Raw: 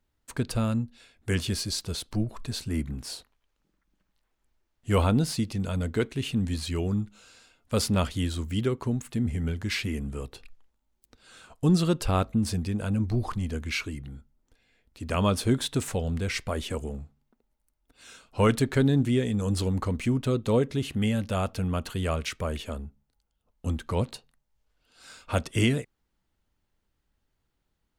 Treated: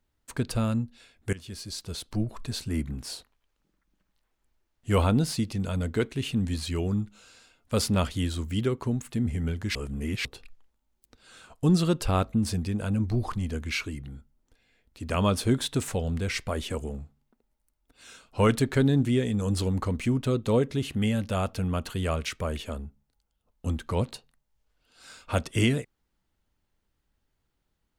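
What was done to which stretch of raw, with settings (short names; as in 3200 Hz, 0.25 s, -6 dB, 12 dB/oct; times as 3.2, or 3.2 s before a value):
1.33–2.26 fade in, from -20 dB
9.75–10.25 reverse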